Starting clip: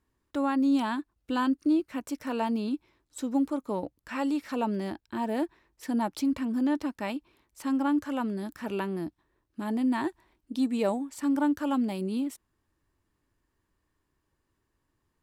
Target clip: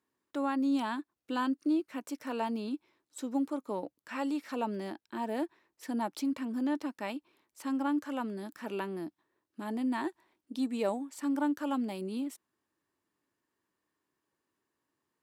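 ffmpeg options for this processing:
-af "highpass=220,volume=-3.5dB"

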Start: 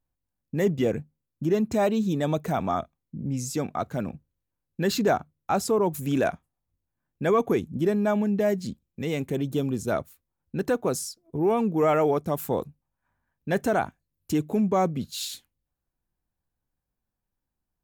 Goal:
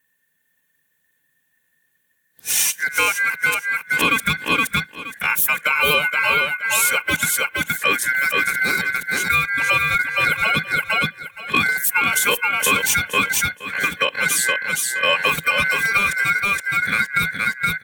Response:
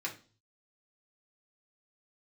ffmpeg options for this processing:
-filter_complex "[0:a]areverse,bandreject=f=1k:w=9.7,aecho=1:1:3.1:0.89,aecho=1:1:470|940|1410:0.562|0.09|0.0144,asplit=2[a][b];[1:a]atrim=start_sample=2205,atrim=end_sample=3087[c];[b][c]afir=irnorm=-1:irlink=0,volume=-19dB[d];[a][d]amix=inputs=2:normalize=0,aeval=exprs='val(0)*sin(2*PI*1800*n/s)':c=same,highshelf=f=7.5k:g=8,acompressor=threshold=-25dB:ratio=6,equalizer=f=160:t=o:w=0.33:g=6,equalizer=f=315:t=o:w=0.33:g=10,equalizer=f=800:t=o:w=0.33:g=-4,equalizer=f=1.25k:t=o:w=0.33:g=-11,equalizer=f=2k:t=o:w=0.33:g=-9,equalizer=f=5k:t=o:w=0.33:g=-9,alimiter=level_in=19.5dB:limit=-1dB:release=50:level=0:latency=1,volume=-4dB"

